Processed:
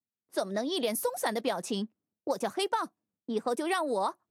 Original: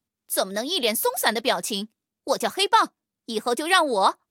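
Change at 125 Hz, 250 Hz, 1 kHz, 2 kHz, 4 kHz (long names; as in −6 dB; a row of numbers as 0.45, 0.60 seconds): −3.0, −3.0, −10.5, −12.5, −13.0 decibels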